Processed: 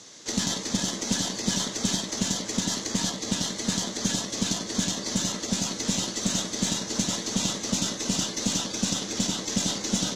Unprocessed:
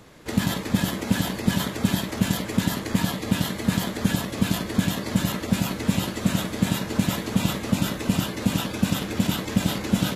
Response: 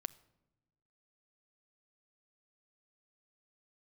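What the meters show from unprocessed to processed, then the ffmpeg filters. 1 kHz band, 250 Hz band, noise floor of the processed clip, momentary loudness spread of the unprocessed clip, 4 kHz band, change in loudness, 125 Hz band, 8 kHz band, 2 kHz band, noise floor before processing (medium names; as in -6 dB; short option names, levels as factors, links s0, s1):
-5.0 dB, -6.0 dB, -37 dBFS, 1 LU, +3.0 dB, -2.0 dB, -9.0 dB, +8.5 dB, -5.5 dB, -34 dBFS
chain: -filter_complex "[0:a]acrossover=split=1300[s0][s1];[s1]alimiter=level_in=1.33:limit=0.0631:level=0:latency=1:release=403,volume=0.75[s2];[s0][s2]amix=inputs=2:normalize=0,highpass=150,equalizer=f=150:t=q:w=4:g=-5,equalizer=f=2000:t=q:w=4:g=5,equalizer=f=6100:t=q:w=4:g=8,lowpass=f=7100:w=0.5412,lowpass=f=7100:w=1.3066,aexciter=amount=4.5:drive=6.9:freq=3300,aeval=exprs='0.501*(cos(1*acos(clip(val(0)/0.501,-1,1)))-cos(1*PI/2))+0.0158*(cos(6*acos(clip(val(0)/0.501,-1,1)))-cos(6*PI/2))':c=same,volume=0.631"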